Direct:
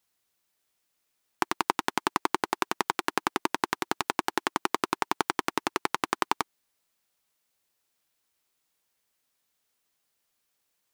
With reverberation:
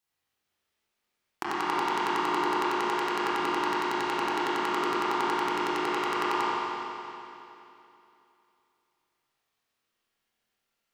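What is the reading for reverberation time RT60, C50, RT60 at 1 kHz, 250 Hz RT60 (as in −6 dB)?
2.9 s, −6.5 dB, 2.9 s, 2.9 s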